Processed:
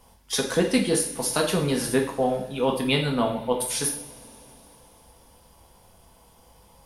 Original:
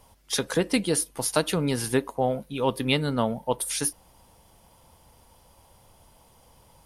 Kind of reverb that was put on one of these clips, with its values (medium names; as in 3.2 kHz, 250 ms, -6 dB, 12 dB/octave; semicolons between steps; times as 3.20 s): two-slope reverb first 0.54 s, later 4 s, from -22 dB, DRR 0.5 dB; trim -1 dB